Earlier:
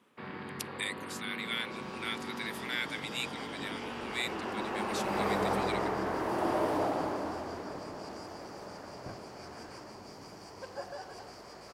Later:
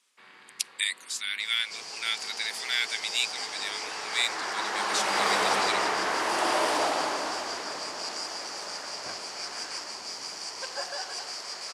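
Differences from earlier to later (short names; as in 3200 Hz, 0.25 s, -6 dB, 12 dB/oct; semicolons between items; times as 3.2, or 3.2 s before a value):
first sound -10.5 dB; second sound +7.0 dB; master: add weighting filter ITU-R 468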